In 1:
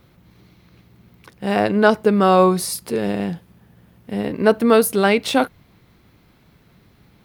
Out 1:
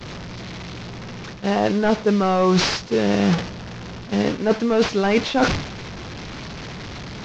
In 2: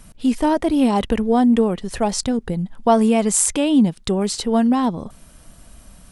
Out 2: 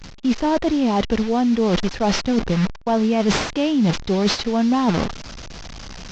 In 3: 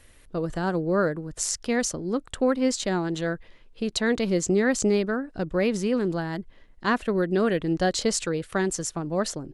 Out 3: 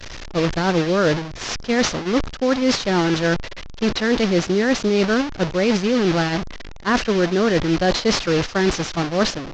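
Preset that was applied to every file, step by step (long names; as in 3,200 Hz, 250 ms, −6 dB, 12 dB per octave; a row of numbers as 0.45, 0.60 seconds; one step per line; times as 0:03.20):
linear delta modulator 32 kbit/s, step −25.5 dBFS
downward expander −24 dBFS
reversed playback
downward compressor 16 to 1, threshold −26 dBFS
reversed playback
loudness normalisation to −20 LKFS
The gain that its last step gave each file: +11.5, +11.0, +12.0 decibels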